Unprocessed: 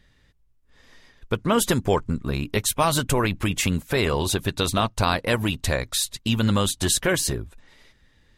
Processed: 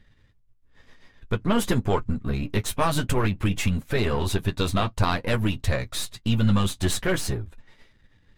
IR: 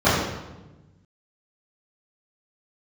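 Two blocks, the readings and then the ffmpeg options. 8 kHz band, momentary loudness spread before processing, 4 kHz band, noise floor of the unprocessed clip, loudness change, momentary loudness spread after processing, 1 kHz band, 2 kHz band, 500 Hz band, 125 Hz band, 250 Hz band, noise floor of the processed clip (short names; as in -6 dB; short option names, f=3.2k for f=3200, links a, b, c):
-8.5 dB, 5 LU, -5.0 dB, -61 dBFS, -2.0 dB, 6 LU, -3.0 dB, -3.5 dB, -3.0 dB, +1.0 dB, -0.5 dB, -61 dBFS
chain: -af "aeval=exprs='if(lt(val(0),0),0.447*val(0),val(0))':c=same,bass=f=250:g=4,treble=f=4k:g=-6,flanger=delay=8.9:depth=2.3:regen=-35:speed=0.52:shape=triangular,volume=4dB"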